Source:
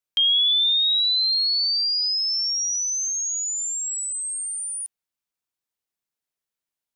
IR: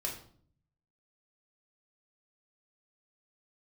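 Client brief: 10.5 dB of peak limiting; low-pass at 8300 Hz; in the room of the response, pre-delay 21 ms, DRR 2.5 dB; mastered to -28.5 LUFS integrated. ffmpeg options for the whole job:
-filter_complex "[0:a]lowpass=8.3k,alimiter=level_in=2dB:limit=-24dB:level=0:latency=1,volume=-2dB,asplit=2[a][b];[1:a]atrim=start_sample=2205,adelay=21[c];[b][c]afir=irnorm=-1:irlink=0,volume=-4.5dB[d];[a][d]amix=inputs=2:normalize=0,volume=-4dB"

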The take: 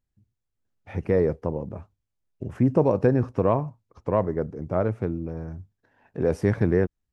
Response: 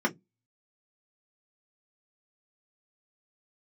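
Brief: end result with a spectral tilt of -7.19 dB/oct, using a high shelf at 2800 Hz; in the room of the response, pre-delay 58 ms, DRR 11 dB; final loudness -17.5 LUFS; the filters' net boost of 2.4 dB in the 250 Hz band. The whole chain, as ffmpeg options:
-filter_complex "[0:a]equalizer=f=250:t=o:g=3,highshelf=f=2.8k:g=4,asplit=2[a][b];[1:a]atrim=start_sample=2205,adelay=58[c];[b][c]afir=irnorm=-1:irlink=0,volume=-22dB[d];[a][d]amix=inputs=2:normalize=0,volume=5.5dB"

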